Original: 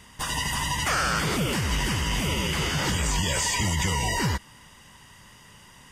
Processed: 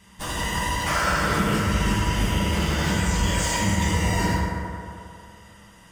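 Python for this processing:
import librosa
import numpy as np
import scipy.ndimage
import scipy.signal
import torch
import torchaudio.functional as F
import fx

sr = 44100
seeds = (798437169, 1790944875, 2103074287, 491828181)

p1 = fx.schmitt(x, sr, flips_db=-25.0)
p2 = x + (p1 * 10.0 ** (-6.0 / 20.0))
p3 = fx.rev_fdn(p2, sr, rt60_s=2.7, lf_ratio=0.75, hf_ratio=0.35, size_ms=30.0, drr_db=-6.5)
y = p3 * 10.0 ** (-7.0 / 20.0)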